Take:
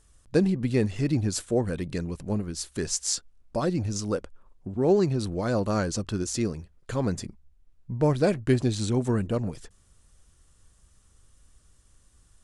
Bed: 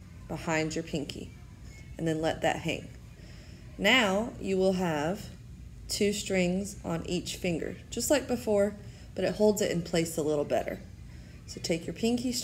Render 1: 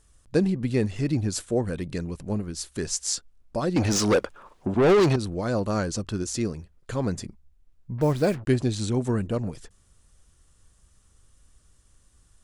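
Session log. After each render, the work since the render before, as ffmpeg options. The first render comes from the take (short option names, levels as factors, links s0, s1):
-filter_complex "[0:a]asettb=1/sr,asplit=3[s0][s1][s2];[s0]atrim=end=3.764[s3];[s1]atrim=start=3.76:end=5.16,asetpts=PTS-STARTPTS,afade=t=in:d=0.004:c=qsin,afade=t=out:st=1.396:d=0.004:c=qsin,asplit=2[s4][s5];[s5]highpass=f=720:p=1,volume=22.4,asoftclip=type=tanh:threshold=0.266[s6];[s4][s6]amix=inputs=2:normalize=0,lowpass=f=4000:p=1,volume=0.501[s7];[s2]atrim=start=5.156[s8];[s3][s7]acrossfade=d=0.004:c1=hsin:c2=qsin[s9];[s9][s8]acrossfade=d=0.004:c1=qsin:c2=hsin,asettb=1/sr,asplit=3[s10][s11][s12];[s10]atrim=end=7.984[s13];[s11]atrim=start=7.98:end=8.47,asetpts=PTS-STARTPTS,afade=t=in:d=0.004:c=qsin,afade=t=out:st=0.486:d=0.004:c=qsin,acrusher=bits=6:mix=0:aa=0.5[s14];[s12]atrim=start=8.466[s15];[s13][s14]acrossfade=d=0.004:c1=hsin:c2=qsin[s16];[s16][s15]acrossfade=d=0.004:c1=qsin:c2=hsin"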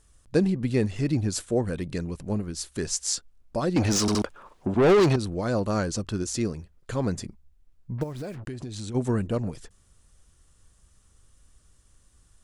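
-filter_complex "[0:a]asplit=3[s0][s1][s2];[s0]afade=t=out:st=8.02:d=0.02[s3];[s1]acompressor=threshold=0.0282:ratio=12:attack=3.2:release=140:knee=1:detection=peak,afade=t=in:st=8.02:d=0.02,afade=t=out:st=8.94:d=0.02[s4];[s2]afade=t=in:st=8.94:d=0.02[s5];[s3][s4][s5]amix=inputs=3:normalize=0,asplit=4[s6][s7][s8][s9];[s6]atrim=end=4.082[s10];[s7]atrim=start=4.008:end=4.082[s11];[s8]atrim=start=4.008:end=4.082[s12];[s9]atrim=start=4.218[s13];[s10][s11]acrossfade=d=0.004:c1=hsin:c2=hsin[s14];[s14][s12]acrossfade=d=0.004:c1=hsin:c2=hsin[s15];[s15][s13]acrossfade=d=0.004:c1=hsin:c2=hsin"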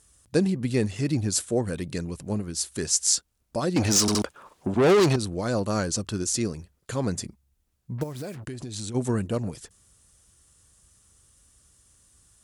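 -af "highpass=59,aemphasis=mode=production:type=cd"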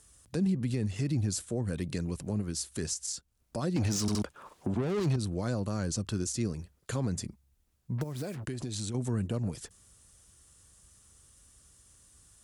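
-filter_complex "[0:a]acrossover=split=210[s0][s1];[s1]acompressor=threshold=0.0158:ratio=2.5[s2];[s0][s2]amix=inputs=2:normalize=0,alimiter=limit=0.0841:level=0:latency=1:release=53"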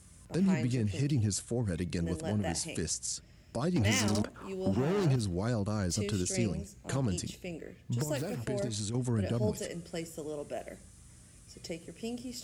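-filter_complex "[1:a]volume=0.299[s0];[0:a][s0]amix=inputs=2:normalize=0"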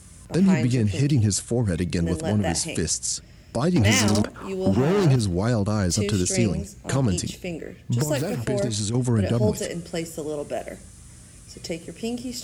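-af "volume=2.99"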